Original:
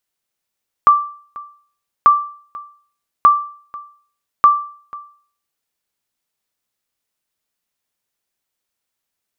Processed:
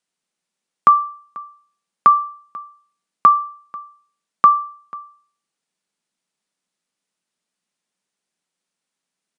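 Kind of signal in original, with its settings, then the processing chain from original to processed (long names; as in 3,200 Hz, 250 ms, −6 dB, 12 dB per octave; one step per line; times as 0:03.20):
ping with an echo 1,170 Hz, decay 0.48 s, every 1.19 s, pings 4, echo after 0.49 s, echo −22 dB −2 dBFS
low shelf with overshoot 130 Hz −10 dB, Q 3
downsampling to 22,050 Hz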